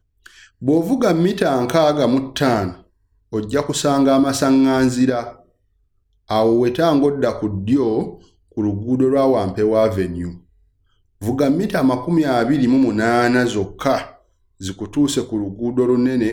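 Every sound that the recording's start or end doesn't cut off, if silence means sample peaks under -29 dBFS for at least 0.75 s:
6.31–10.34

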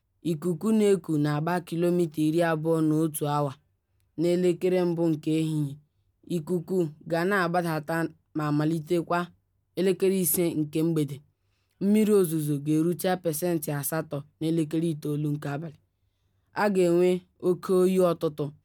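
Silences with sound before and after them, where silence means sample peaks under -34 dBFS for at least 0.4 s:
3.53–4.18
5.73–6.3
9.25–9.77
11.17–11.81
15.68–16.56

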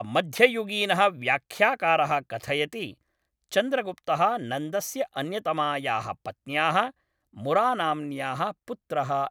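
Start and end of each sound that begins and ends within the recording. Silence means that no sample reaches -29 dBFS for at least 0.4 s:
3.53–6.88

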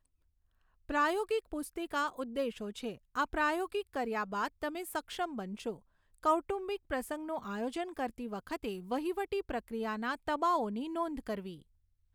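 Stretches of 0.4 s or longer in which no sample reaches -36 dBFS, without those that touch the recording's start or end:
5.72–6.24

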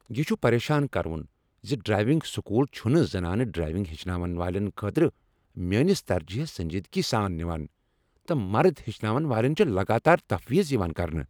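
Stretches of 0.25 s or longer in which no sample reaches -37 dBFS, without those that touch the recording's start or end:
1.25–1.64
5.1–5.57
7.66–8.28

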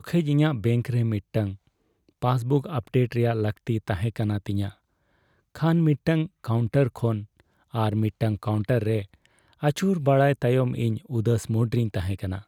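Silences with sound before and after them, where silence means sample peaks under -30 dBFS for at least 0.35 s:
1.52–2.22
4.68–5.55
7.22–7.74
9.02–9.63

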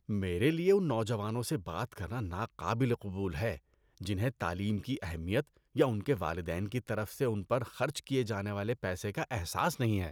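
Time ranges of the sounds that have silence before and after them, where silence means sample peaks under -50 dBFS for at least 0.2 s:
3.98–5.47

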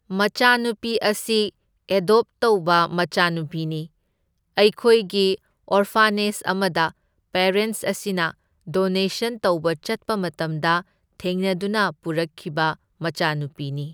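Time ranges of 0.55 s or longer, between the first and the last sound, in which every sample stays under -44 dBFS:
3.87–4.57

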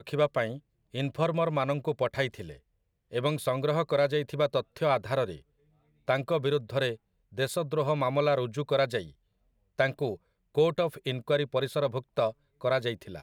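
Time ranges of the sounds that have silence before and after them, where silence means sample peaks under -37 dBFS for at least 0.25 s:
0.95–2.53
3.13–5.36
6.08–6.94
7.38–9.07
9.79–10.15
10.55–12.31

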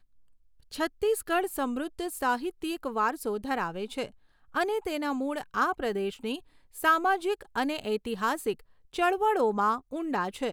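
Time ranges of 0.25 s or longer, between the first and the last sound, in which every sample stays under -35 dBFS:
4.07–4.55
6.36–6.77
8.53–8.94

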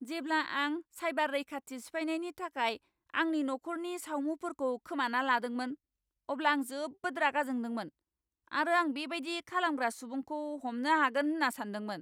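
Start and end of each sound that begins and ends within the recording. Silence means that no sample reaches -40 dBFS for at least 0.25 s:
3.14–5.74
6.29–7.88

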